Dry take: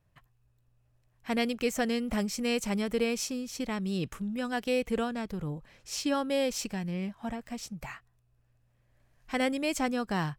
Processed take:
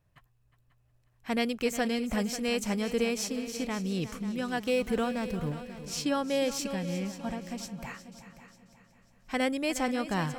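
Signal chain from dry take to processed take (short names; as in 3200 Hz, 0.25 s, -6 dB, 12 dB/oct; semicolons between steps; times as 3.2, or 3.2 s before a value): 4.67–5.52 G.711 law mismatch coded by mu; on a send: multi-head echo 0.18 s, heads second and third, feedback 41%, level -13.5 dB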